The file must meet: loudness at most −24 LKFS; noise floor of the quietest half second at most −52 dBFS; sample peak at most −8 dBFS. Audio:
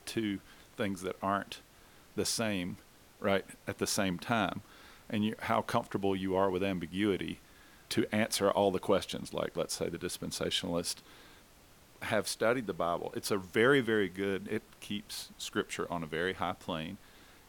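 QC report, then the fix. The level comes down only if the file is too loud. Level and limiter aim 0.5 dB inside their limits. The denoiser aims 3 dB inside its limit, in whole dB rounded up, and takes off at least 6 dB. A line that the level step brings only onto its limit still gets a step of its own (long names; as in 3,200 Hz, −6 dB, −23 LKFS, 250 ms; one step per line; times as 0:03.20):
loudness −33.5 LKFS: in spec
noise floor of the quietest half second −59 dBFS: in spec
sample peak −14.0 dBFS: in spec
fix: no processing needed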